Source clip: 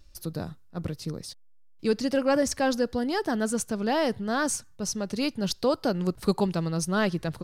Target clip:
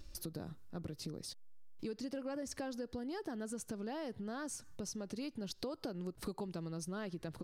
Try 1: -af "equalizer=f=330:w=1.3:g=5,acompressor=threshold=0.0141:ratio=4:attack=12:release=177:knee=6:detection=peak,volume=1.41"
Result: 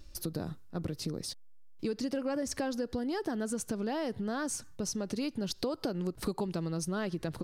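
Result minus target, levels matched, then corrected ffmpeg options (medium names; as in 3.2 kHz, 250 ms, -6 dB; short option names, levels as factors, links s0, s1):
compression: peak gain reduction -8 dB
-af "equalizer=f=330:w=1.3:g=5,acompressor=threshold=0.00398:ratio=4:attack=12:release=177:knee=6:detection=peak,volume=1.41"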